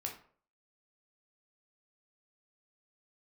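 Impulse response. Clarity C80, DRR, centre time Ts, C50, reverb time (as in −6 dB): 13.5 dB, 0.5 dB, 21 ms, 8.0 dB, 0.50 s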